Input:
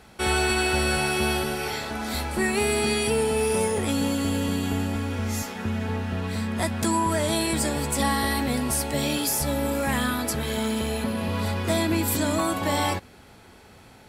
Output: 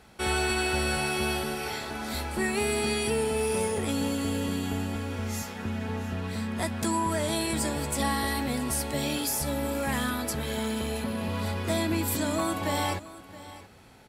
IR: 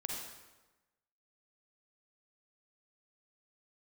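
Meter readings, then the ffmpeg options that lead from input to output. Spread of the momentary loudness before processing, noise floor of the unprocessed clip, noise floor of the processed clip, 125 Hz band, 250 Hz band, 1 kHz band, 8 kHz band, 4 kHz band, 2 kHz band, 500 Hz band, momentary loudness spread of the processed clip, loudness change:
6 LU, −50 dBFS, −48 dBFS, −4.0 dB, −4.0 dB, −4.0 dB, −4.0 dB, −4.0 dB, −4.0 dB, −4.0 dB, 6 LU, −4.0 dB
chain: -af "aecho=1:1:672:0.141,volume=-4dB"

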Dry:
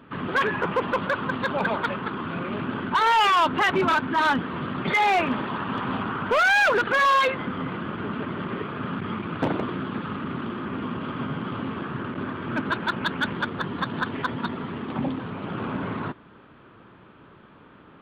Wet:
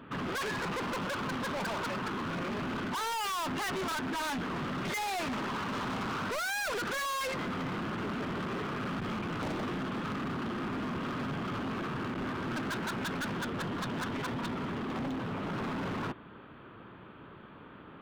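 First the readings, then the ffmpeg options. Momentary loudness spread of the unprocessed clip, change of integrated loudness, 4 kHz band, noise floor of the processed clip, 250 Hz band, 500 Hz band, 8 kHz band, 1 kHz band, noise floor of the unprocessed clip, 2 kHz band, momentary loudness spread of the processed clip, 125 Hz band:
12 LU, −9.5 dB, −7.5 dB, −51 dBFS, −6.0 dB, −9.0 dB, +3.0 dB, −11.5 dB, −51 dBFS, −11.5 dB, 4 LU, −5.5 dB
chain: -af "asoftclip=type=hard:threshold=-33dB"

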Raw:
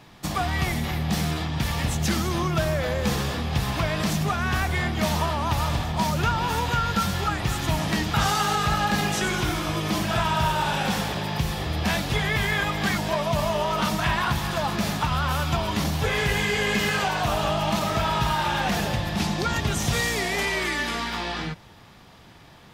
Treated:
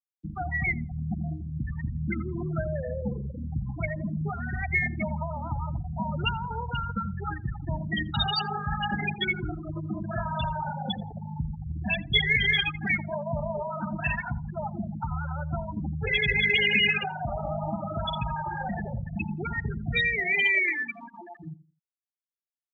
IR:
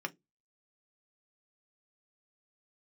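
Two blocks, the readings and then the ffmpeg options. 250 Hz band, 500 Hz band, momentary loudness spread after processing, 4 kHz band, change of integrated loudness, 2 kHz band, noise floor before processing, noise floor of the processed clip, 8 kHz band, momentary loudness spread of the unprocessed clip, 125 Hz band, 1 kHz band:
−6.0 dB, −7.0 dB, 13 LU, −3.0 dB, −3.5 dB, 0.0 dB, −49 dBFS, below −85 dBFS, below −35 dB, 4 LU, −5.0 dB, −8.5 dB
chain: -filter_complex "[0:a]afftfilt=real='re*gte(hypot(re,im),0.158)':imag='im*gte(hypot(re,im),0.158)':win_size=1024:overlap=0.75,acrossover=split=3800[link_01][link_02];[link_02]acompressor=threshold=-56dB:ratio=4:attack=1:release=60[link_03];[link_01][link_03]amix=inputs=2:normalize=0,aexciter=amount=14.4:drive=4.6:freq=2300,asuperstop=centerf=1100:order=4:qfactor=4.2,asplit=2[link_04][link_05];[link_05]adelay=84,lowpass=frequency=810:poles=1,volume=-15dB,asplit=2[link_06][link_07];[link_07]adelay=84,lowpass=frequency=810:poles=1,volume=0.27,asplit=2[link_08][link_09];[link_09]adelay=84,lowpass=frequency=810:poles=1,volume=0.27[link_10];[link_06][link_08][link_10]amix=inputs=3:normalize=0[link_11];[link_04][link_11]amix=inputs=2:normalize=0,volume=-5dB"

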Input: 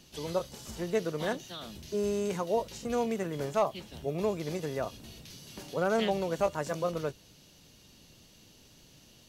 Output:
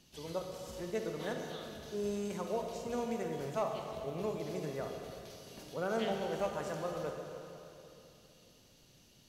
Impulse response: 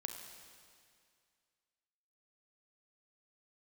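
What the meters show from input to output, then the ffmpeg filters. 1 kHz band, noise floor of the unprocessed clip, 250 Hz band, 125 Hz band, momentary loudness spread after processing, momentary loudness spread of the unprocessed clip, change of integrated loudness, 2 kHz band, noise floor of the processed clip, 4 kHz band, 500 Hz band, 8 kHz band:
−5.5 dB, −58 dBFS, −5.5 dB, −6.0 dB, 13 LU, 12 LU, −6.0 dB, −6.0 dB, −63 dBFS, −6.0 dB, −5.5 dB, −6.0 dB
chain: -filter_complex "[1:a]atrim=start_sample=2205,asetrate=31752,aresample=44100[link_01];[0:a][link_01]afir=irnorm=-1:irlink=0,volume=-6dB"

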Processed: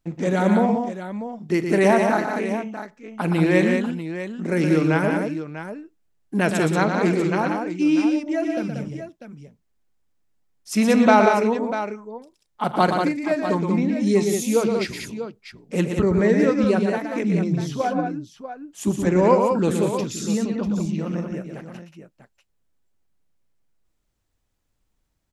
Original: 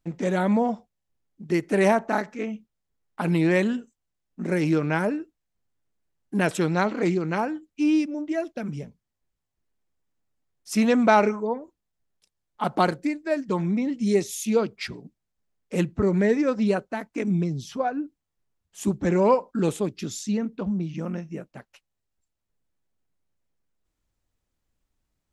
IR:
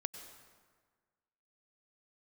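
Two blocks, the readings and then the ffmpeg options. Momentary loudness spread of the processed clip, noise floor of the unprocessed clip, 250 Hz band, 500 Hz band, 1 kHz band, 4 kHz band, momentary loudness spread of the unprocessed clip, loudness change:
16 LU, −82 dBFS, +4.0 dB, +4.0 dB, +4.0 dB, +4.0 dB, 13 LU, +3.5 dB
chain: -af "aecho=1:1:44|119|184|644:0.141|0.473|0.531|0.282,volume=2dB"

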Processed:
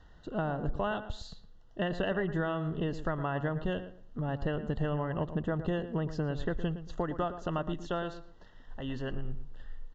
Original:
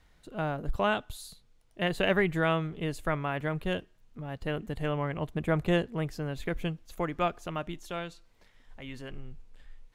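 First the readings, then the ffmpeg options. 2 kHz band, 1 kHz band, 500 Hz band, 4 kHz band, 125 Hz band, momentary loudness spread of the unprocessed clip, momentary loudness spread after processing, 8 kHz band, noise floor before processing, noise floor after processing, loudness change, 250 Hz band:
−6.0 dB, −3.0 dB, −2.5 dB, −6.5 dB, −0.5 dB, 17 LU, 12 LU, can't be measured, −63 dBFS, −55 dBFS, −3.0 dB, −1.0 dB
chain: -filter_complex "[0:a]aemphasis=mode=reproduction:type=75kf,asplit=2[link_01][link_02];[link_02]alimiter=limit=-24dB:level=0:latency=1:release=201,volume=1dB[link_03];[link_01][link_03]amix=inputs=2:normalize=0,acompressor=threshold=-28dB:ratio=6,asuperstop=centerf=2300:order=12:qfactor=3.4,asplit=2[link_04][link_05];[link_05]adelay=114,lowpass=frequency=1800:poles=1,volume=-11dB,asplit=2[link_06][link_07];[link_07]adelay=114,lowpass=frequency=1800:poles=1,volume=0.25,asplit=2[link_08][link_09];[link_09]adelay=114,lowpass=frequency=1800:poles=1,volume=0.25[link_10];[link_06][link_08][link_10]amix=inputs=3:normalize=0[link_11];[link_04][link_11]amix=inputs=2:normalize=0,aresample=16000,aresample=44100"

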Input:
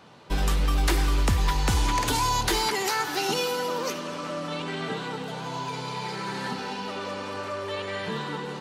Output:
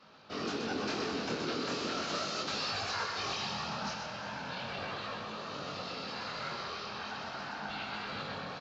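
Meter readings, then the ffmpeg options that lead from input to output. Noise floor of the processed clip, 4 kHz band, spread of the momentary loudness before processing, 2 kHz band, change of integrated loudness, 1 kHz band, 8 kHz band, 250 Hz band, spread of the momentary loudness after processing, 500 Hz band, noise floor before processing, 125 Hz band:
−42 dBFS, −6.0 dB, 9 LU, −6.5 dB, −9.0 dB, −9.5 dB, −13.0 dB, −7.5 dB, 6 LU, −8.5 dB, −35 dBFS, −17.0 dB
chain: -filter_complex "[0:a]aecho=1:1:7.5:0.65,crystalizer=i=6.5:c=0,afftfilt=real='hypot(re,im)*cos(2*PI*random(0))':imag='hypot(re,im)*sin(2*PI*random(1))':win_size=512:overlap=0.75,aeval=exprs='val(0)*sin(2*PI*350*n/s)':channel_layout=same,flanger=delay=19:depth=6.4:speed=0.38,aresample=16000,asoftclip=type=tanh:threshold=-27.5dB,aresample=44100,highpass=110,equalizer=frequency=210:width_type=q:width=4:gain=4,equalizer=frequency=1300:width_type=q:width=4:gain=4,equalizer=frequency=2000:width_type=q:width=4:gain=-6,equalizer=frequency=3400:width_type=q:width=4:gain=-7,lowpass=frequency=4400:width=0.5412,lowpass=frequency=4400:width=1.3066,asplit=2[link_01][link_02];[link_02]aecho=0:1:127:0.501[link_03];[link_01][link_03]amix=inputs=2:normalize=0"

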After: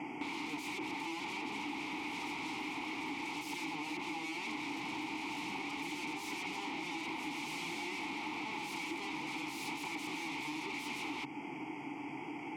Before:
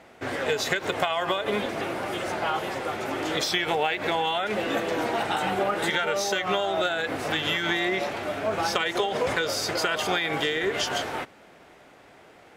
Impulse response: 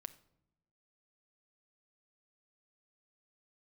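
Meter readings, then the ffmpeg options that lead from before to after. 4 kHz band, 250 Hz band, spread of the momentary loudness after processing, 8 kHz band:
−14.5 dB, −7.5 dB, 1 LU, −13.5 dB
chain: -filter_complex "[0:a]asplit=2[link_01][link_02];[link_02]alimiter=limit=-21.5dB:level=0:latency=1,volume=-2.5dB[link_03];[link_01][link_03]amix=inputs=2:normalize=0,asuperstop=centerf=3900:order=20:qfactor=3.2,asoftclip=type=tanh:threshold=-22dB,equalizer=frequency=140:width_type=o:width=0.39:gain=14,aeval=exprs='0.0266*(abs(mod(val(0)/0.0266+3,4)-2)-1)':channel_layout=same,asplit=3[link_04][link_05][link_06];[link_04]bandpass=frequency=300:width_type=q:width=8,volume=0dB[link_07];[link_05]bandpass=frequency=870:width_type=q:width=8,volume=-6dB[link_08];[link_06]bandpass=frequency=2240:width_type=q:width=8,volume=-9dB[link_09];[link_07][link_08][link_09]amix=inputs=3:normalize=0,highshelf=frequency=4000:gain=11.5,acompressor=threshold=-53dB:ratio=6,volume=15.5dB"

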